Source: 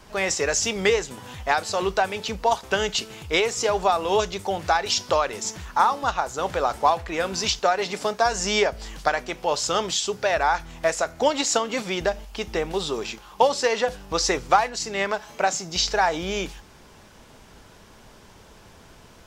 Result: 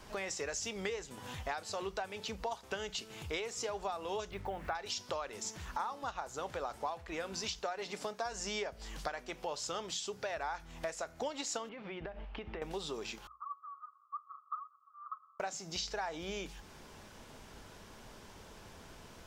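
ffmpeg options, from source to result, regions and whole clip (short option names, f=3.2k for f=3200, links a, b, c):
-filter_complex "[0:a]asettb=1/sr,asplit=3[a][b][c];[a]atrim=end=4.314[d];[b]atrim=start=4.31:end=4.75,asetpts=PTS-STARTPTS,afade=t=in:d=0.004:c=qsin,afade=t=out:st=0.436:d=0.004:c=qsin,lowpass=f=2k:t=q:w=1.5,aeval=exprs='val(0)+0.0158*(sin(2*PI*50*n/s)+sin(2*PI*2*50*n/s)/2+sin(2*PI*3*50*n/s)/3+sin(2*PI*4*50*n/s)/4+sin(2*PI*5*50*n/s)/5)':c=same,acrusher=bits=7:mix=0:aa=0.5[e];[c]atrim=start=4.746[f];[d][e]acrossfade=d=0.004:c1=hsin:c2=qsin[g];[g][f]acrossfade=d=0.004:c1=qsin:c2=hsin,asettb=1/sr,asplit=3[h][i][j];[h]atrim=end=11.694[k];[i]atrim=start=11.69:end=12.62,asetpts=PTS-STARTPTS,afade=t=in:d=0.004:c=qsin,afade=t=out:st=0.926:d=0.004:c=qsin,lowpass=f=2.8k:w=0.5412,lowpass=f=2.8k:w=1.3066,acompressor=threshold=-33dB:ratio=6:attack=3.2:release=140:knee=1:detection=peak[l];[j]atrim=start=12.616[m];[k][l]acrossfade=d=0.004:c1=hsin:c2=qsin[n];[n][m]acrossfade=d=0.004:c1=qsin:c2=hsin,asettb=1/sr,asplit=3[o][p][q];[o]atrim=end=13.274[r];[p]atrim=start=13.27:end=15.4,asetpts=PTS-STARTPTS,afade=t=in:d=0.004:c=qsin,afade=t=out:st=2.126:d=0.004:c=qsin,aecho=1:1:6.3:0.32,atrim=end_sample=93933,asoftclip=type=hard:threshold=-12.5dB,asuperpass=centerf=1200:order=8:qfactor=6.1[s];[q]atrim=start=15.396[t];[r][s]acrossfade=d=0.004:c1=hsin:c2=qsin[u];[u][t]acrossfade=d=0.004:c1=qsin:c2=hsin,bandreject=f=60:t=h:w=6,bandreject=f=120:t=h:w=6,bandreject=f=180:t=h:w=6,acompressor=threshold=-36dB:ratio=3,volume=-4dB"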